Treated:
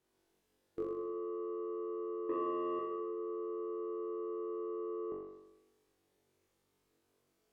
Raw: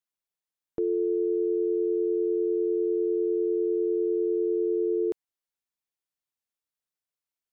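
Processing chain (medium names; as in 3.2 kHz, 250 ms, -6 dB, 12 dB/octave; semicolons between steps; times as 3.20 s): spectral levelling over time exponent 0.6; 2.29–2.79 s: peaking EQ 240 Hz +9 dB 1.5 oct; low-pass that closes with the level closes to 520 Hz, closed at -20.5 dBFS; gate -21 dBFS, range -17 dB; in parallel at +1.5 dB: compressor with a negative ratio -31 dBFS; on the sum: peak limiter -22.5 dBFS, peak gain reduction 7 dB; saturation -29.5 dBFS, distortion -14 dB; on a send: flutter echo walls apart 3.6 m, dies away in 1 s; on the sum: trim -1 dB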